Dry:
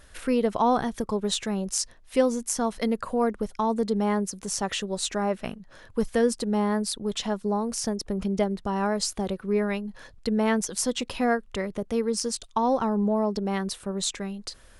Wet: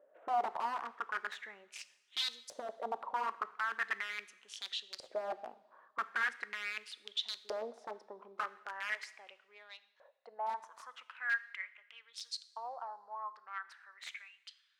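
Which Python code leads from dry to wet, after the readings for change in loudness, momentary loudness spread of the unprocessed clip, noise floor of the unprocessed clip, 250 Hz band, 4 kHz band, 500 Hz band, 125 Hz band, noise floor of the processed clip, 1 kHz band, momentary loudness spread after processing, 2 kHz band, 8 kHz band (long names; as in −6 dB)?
−13.0 dB, 6 LU, −52 dBFS, −36.0 dB, −8.0 dB, −20.0 dB, below −40 dB, −71 dBFS, −9.5 dB, 16 LU, −1.0 dB, −24.0 dB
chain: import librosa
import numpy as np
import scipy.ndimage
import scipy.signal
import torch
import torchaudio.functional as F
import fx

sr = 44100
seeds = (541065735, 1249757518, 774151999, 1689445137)

y = fx.wiener(x, sr, points=9)
y = fx.filter_sweep_highpass(y, sr, from_hz=320.0, to_hz=1400.0, start_s=7.7, end_s=11.24, q=1.4)
y = (np.mod(10.0 ** (18.5 / 20.0) * y + 1.0, 2.0) - 1.0) / 10.0 ** (18.5 / 20.0)
y = fx.filter_lfo_bandpass(y, sr, shape='saw_up', hz=0.4, low_hz=540.0, high_hz=4800.0, q=6.7)
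y = fx.rev_double_slope(y, sr, seeds[0], early_s=0.79, late_s=2.0, knee_db=-16, drr_db=13.5)
y = y * librosa.db_to_amplitude(1.0)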